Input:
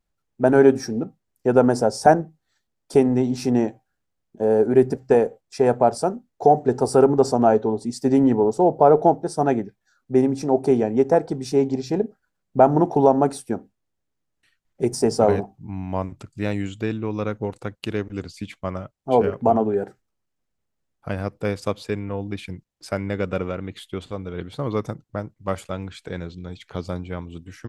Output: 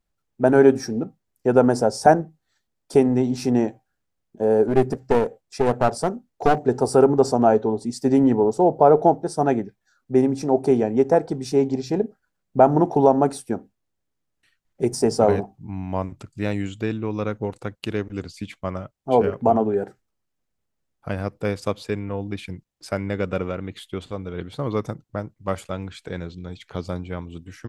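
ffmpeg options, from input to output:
-filter_complex "[0:a]asettb=1/sr,asplit=3[a][b][c];[a]atrim=end=4.674[d];[b]atrim=start=4.67:end=6.63,asetpts=PTS-STARTPTS,afade=t=in:d=0.004:c=qsin,afade=t=out:st=1.956:d=0.004:c=qsin,aeval=exprs='clip(val(0),-1,0.0794)':c=same[e];[c]atrim=start=6.626[f];[d][e]acrossfade=d=0.004:c1=hsin:c2=qsin[g];[g][f]acrossfade=d=0.004:c1=qsin:c2=hsin"

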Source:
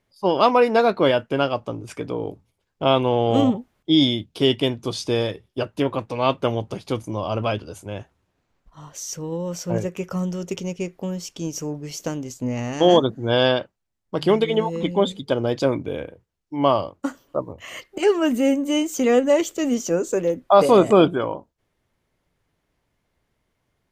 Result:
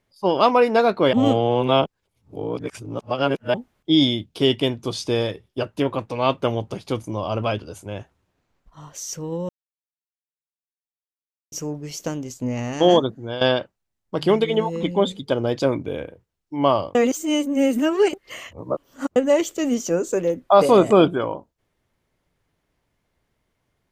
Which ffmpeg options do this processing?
-filter_complex "[0:a]asplit=8[a][b][c][d][e][f][g][h];[a]atrim=end=1.132[i];[b]atrim=start=1.128:end=3.542,asetpts=PTS-STARTPTS,areverse[j];[c]atrim=start=3.538:end=9.49,asetpts=PTS-STARTPTS,afade=t=out:st=5.948:d=0.004:c=hsin[k];[d]atrim=start=9.49:end=11.52,asetpts=PTS-STARTPTS,volume=0[l];[e]atrim=start=11.52:end=13.41,asetpts=PTS-STARTPTS,afade=t=in:d=0.004:c=hsin,afade=t=out:st=1.38:d=0.51:silence=0.211349[m];[f]atrim=start=13.41:end=16.952,asetpts=PTS-STARTPTS,afade=t=in:d=0.004:c=hsin:silence=0.211349[n];[g]atrim=start=16.948:end=19.162,asetpts=PTS-STARTPTS,areverse[o];[h]atrim=start=19.158[p];[i][j]acrossfade=d=0.004:c1=hsin:c2=hsin[q];[k][l][m][n]concat=n=4:v=0:a=1[r];[q][r]acrossfade=d=0.004:c1=hsin:c2=hsin[s];[s][o]acrossfade=d=0.004:c1=hsin:c2=hsin[t];[t][p]acrossfade=d=0.004:c1=hsin:c2=hsin"

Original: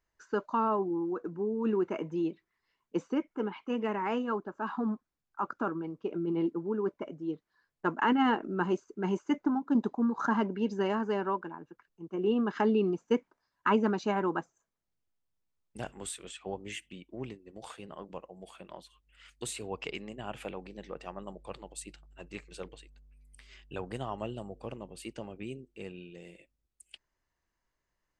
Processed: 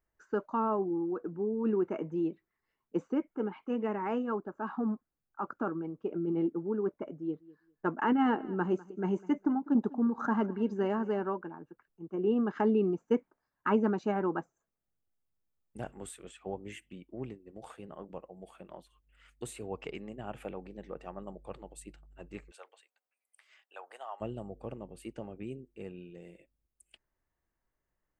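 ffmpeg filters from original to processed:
-filter_complex "[0:a]asettb=1/sr,asplit=3[a][b][c];[a]atrim=end=7.204[d];[b]atrim=start=7.2:end=11.23,asetpts=PTS-STARTPTS,afade=t=in:d=0.004:c=qsin,afade=t=out:st=4.026:d=0.004:c=qsin,aecho=1:1:200|400:0.0944|0.0179,atrim=end_sample=177723[e];[c]atrim=start=11.226[f];[d][e]acrossfade=d=0.004:c1=hsin:c2=qsin[g];[g][f]acrossfade=d=0.004:c1=qsin:c2=hsin,asplit=3[h][i][j];[h]afade=t=out:st=22.5:d=0.02[k];[i]highpass=f=680:w=0.5412,highpass=f=680:w=1.3066,afade=t=in:st=22.5:d=0.02,afade=t=out:st=24.2:d=0.02[l];[j]afade=t=in:st=24.2:d=0.02[m];[k][l][m]amix=inputs=3:normalize=0,equalizer=f=4.7k:w=0.56:g=-12,bandreject=f=1k:w=13"

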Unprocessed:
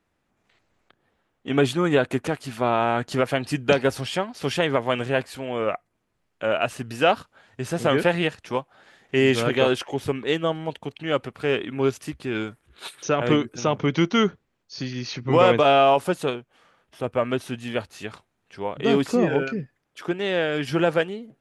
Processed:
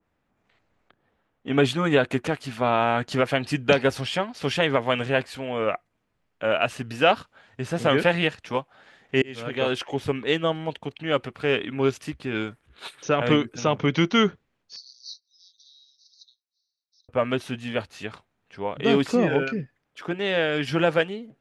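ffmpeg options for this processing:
-filter_complex "[0:a]asettb=1/sr,asplit=3[a][b][c];[a]atrim=end=14.764[d];[b]atrim=start=14.76:end=17.09,asetpts=PTS-STARTPTS,afade=t=in:d=0.004:c=qsin,afade=t=out:st=2.326:d=0.004:c=qsin,asuperpass=centerf=4900:order=20:qfactor=2[e];[c]atrim=start=17.086[f];[d][e]acrossfade=d=0.004:c1=hsin:c2=qsin[g];[g][f]acrossfade=d=0.004:c1=qsin:c2=hsin,asplit=2[h][i];[h]atrim=end=9.22,asetpts=PTS-STARTPTS,afade=t=out:st=9.216:d=0.004:c=hsin[j];[i]atrim=start=9.22,asetpts=PTS-STARTPTS,afade=t=in:d=0.71[k];[j][k]concat=n=2:v=0:a=1,lowpass=f=3k:p=1,bandreject=f=360:w=12,adynamicequalizer=threshold=0.0158:dfrequency=1800:dqfactor=0.7:tfrequency=1800:tqfactor=0.7:attack=5:release=100:ratio=0.375:range=3:mode=boostabove:tftype=highshelf"

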